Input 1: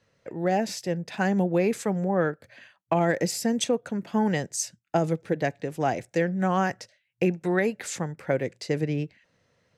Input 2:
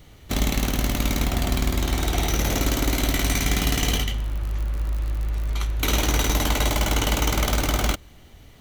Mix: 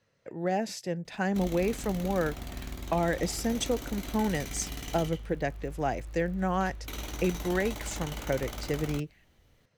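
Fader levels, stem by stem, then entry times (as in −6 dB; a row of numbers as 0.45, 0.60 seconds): −4.5, −16.5 decibels; 0.00, 1.05 seconds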